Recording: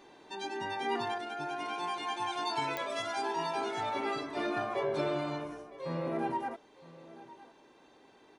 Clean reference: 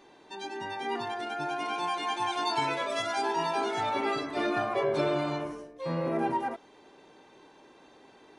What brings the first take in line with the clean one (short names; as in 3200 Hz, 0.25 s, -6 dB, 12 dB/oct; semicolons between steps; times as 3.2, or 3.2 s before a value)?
de-click; inverse comb 0.961 s -18.5 dB; gain 0 dB, from 1.18 s +4.5 dB